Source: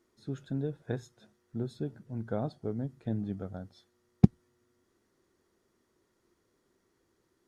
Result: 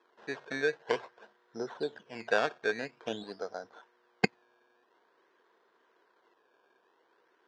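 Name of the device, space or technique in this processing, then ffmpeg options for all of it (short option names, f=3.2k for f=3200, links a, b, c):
circuit-bent sampling toy: -filter_complex "[0:a]acrusher=samples=15:mix=1:aa=0.000001:lfo=1:lforange=15:lforate=0.49,highpass=450,equalizer=f=460:t=q:w=4:g=8,equalizer=f=700:t=q:w=4:g=5,equalizer=f=1k:t=q:w=4:g=10,equalizer=f=1.6k:t=q:w=4:g=10,equalizer=f=3.3k:t=q:w=4:g=3,lowpass=f=5.6k:w=0.5412,lowpass=f=5.6k:w=1.3066,asettb=1/sr,asplit=3[a][b][c];[a]atrim=end=3.234[d];[b]atrim=start=3.23:end=3.64,asetpts=PTS-STARTPTS,afade=t=in:d=0.004:c=qsin,afade=t=out:st=0.406:d=0.004:c=qsin,lowshelf=f=220:g=-9[e];[c]atrim=start=3.636[f];[d][e]acrossfade=d=0.004:c1=hsin:c2=qsin[g];[g][f]acrossfade=d=0.004:c1=qsin:c2=hsin,volume=3dB"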